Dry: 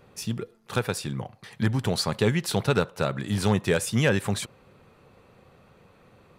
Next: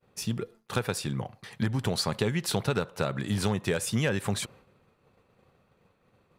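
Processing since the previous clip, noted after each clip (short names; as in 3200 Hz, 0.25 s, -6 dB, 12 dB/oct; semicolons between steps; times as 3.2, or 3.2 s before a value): expander -47 dBFS; compressor, threshold -23 dBFS, peak gain reduction 6.5 dB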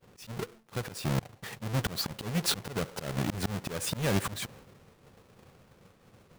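half-waves squared off; auto swell 0.359 s; gain +2.5 dB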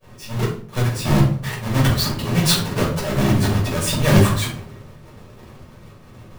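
shoebox room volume 350 m³, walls furnished, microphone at 5.7 m; gain +3.5 dB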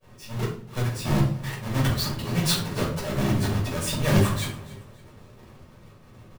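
feedback echo 0.281 s, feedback 35%, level -19.5 dB; gain -6.5 dB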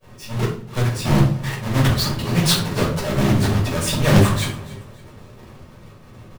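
Doppler distortion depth 0.29 ms; gain +6.5 dB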